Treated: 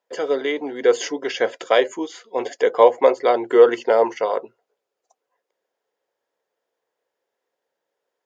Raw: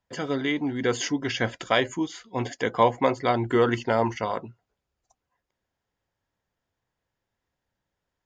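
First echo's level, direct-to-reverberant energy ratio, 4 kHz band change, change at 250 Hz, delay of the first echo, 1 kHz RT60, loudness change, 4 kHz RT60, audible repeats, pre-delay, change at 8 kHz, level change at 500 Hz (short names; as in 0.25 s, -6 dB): none, none, +1.0 dB, -1.5 dB, none, none, +6.5 dB, none, none, none, n/a, +9.5 dB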